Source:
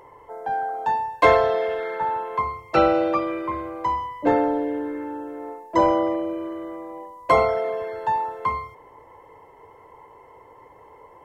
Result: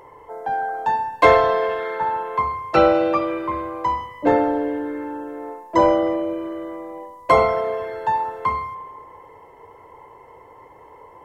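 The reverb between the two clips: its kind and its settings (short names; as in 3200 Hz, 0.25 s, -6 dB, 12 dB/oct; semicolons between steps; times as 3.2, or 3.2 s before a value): spring tank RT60 1.5 s, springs 32 ms, chirp 20 ms, DRR 11 dB; gain +2.5 dB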